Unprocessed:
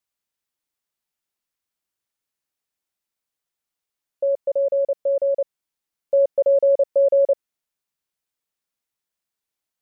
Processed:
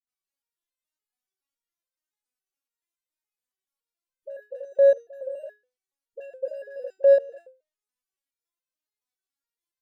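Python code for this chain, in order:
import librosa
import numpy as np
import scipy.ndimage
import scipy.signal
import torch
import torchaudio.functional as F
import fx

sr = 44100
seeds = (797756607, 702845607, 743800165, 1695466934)

p1 = fx.envelope_sharpen(x, sr, power=2.0)
p2 = fx.env_lowpass_down(p1, sr, base_hz=560.0, full_db=-14.5)
p3 = np.clip(p2, -10.0 ** (-20.0 / 20.0), 10.0 ** (-20.0 / 20.0))
p4 = p2 + (p3 * 10.0 ** (-7.0 / 20.0))
p5 = fx.dispersion(p4, sr, late='highs', ms=76.0, hz=420.0)
p6 = fx.resonator_held(p5, sr, hz=7.1, low_hz=250.0, high_hz=520.0)
y = p6 * 10.0 ** (4.0 / 20.0)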